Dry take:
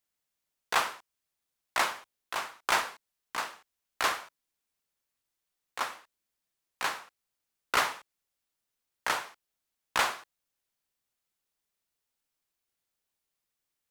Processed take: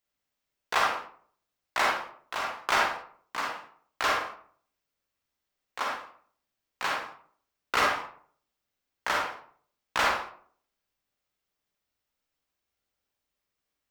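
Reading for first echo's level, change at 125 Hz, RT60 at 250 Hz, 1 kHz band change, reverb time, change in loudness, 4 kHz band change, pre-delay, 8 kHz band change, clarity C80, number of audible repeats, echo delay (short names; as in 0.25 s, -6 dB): none, +4.5 dB, 0.60 s, +3.5 dB, 0.55 s, +2.0 dB, +1.0 dB, 40 ms, -2.5 dB, 8.0 dB, none, none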